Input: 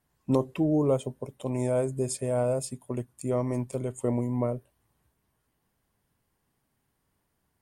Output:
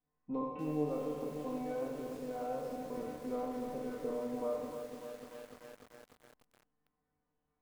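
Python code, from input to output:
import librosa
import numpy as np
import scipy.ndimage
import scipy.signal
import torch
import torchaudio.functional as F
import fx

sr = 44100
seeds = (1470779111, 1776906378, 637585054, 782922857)

p1 = fx.spec_trails(x, sr, decay_s=0.94)
p2 = fx.hum_notches(p1, sr, base_hz=60, count=5)
p3 = p2 + 0.81 * np.pad(p2, (int(4.0 * sr / 1000.0), 0))[:len(p2)]
p4 = fx.rider(p3, sr, range_db=4, speed_s=0.5)
p5 = scipy.signal.sosfilt(scipy.signal.butter(2, 1500.0, 'lowpass', fs=sr, output='sos'), p4)
p6 = fx.comb_fb(p5, sr, f0_hz=150.0, decay_s=0.71, harmonics='all', damping=0.0, mix_pct=90)
p7 = p6 + fx.echo_feedback(p6, sr, ms=83, feedback_pct=52, wet_db=-10.0, dry=0)
p8 = fx.echo_crushed(p7, sr, ms=296, feedback_pct=80, bits=9, wet_db=-8)
y = p8 * 10.0 ** (1.5 / 20.0)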